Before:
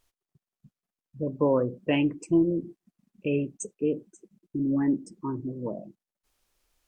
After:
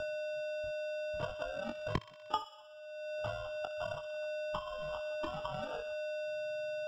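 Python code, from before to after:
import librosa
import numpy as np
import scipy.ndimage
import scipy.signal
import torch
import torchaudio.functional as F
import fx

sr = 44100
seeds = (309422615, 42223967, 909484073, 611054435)

y = fx.octave_mirror(x, sr, pivot_hz=540.0)
y = fx.high_shelf(y, sr, hz=2300.0, db=-5.0)
y = fx.hum_notches(y, sr, base_hz=60, count=8)
y = fx.level_steps(y, sr, step_db=22)
y = fx.env_flanger(y, sr, rest_ms=5.7, full_db=-34.5)
y = y + 10.0 ** (-46.0 / 20.0) * np.sin(2.0 * np.pi * 610.0 * np.arange(len(y)) / sr)
y = fx.transient(y, sr, attack_db=12, sustain_db=-2)
y = fx.sample_hold(y, sr, seeds[0], rate_hz=2100.0, jitter_pct=0)
y = fx.air_absorb(y, sr, metres=190.0)
y = fx.doubler(y, sr, ms=21.0, db=-6.5)
y = fx.echo_wet_highpass(y, sr, ms=61, feedback_pct=53, hz=1800.0, wet_db=-8.5)
y = fx.band_squash(y, sr, depth_pct=100)
y = y * 10.0 ** (2.5 / 20.0)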